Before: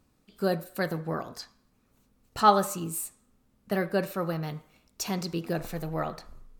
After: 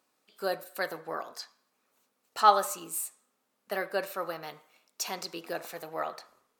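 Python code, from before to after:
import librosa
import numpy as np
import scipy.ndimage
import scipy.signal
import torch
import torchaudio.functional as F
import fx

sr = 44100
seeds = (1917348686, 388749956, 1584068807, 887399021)

y = scipy.signal.sosfilt(scipy.signal.butter(2, 540.0, 'highpass', fs=sr, output='sos'), x)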